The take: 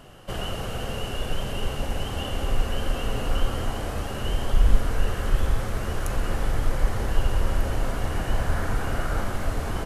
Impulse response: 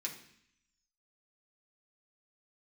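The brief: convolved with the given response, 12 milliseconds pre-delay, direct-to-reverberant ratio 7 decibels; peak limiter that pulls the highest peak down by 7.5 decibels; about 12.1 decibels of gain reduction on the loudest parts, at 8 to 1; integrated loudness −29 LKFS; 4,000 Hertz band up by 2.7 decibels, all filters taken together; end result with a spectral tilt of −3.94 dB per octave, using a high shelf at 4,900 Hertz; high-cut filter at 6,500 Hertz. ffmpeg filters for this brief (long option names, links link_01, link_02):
-filter_complex "[0:a]lowpass=6500,equalizer=frequency=4000:width_type=o:gain=7.5,highshelf=frequency=4900:gain=-6,acompressor=threshold=-21dB:ratio=8,alimiter=limit=-21dB:level=0:latency=1,asplit=2[link_01][link_02];[1:a]atrim=start_sample=2205,adelay=12[link_03];[link_02][link_03]afir=irnorm=-1:irlink=0,volume=-7dB[link_04];[link_01][link_04]amix=inputs=2:normalize=0,volume=4dB"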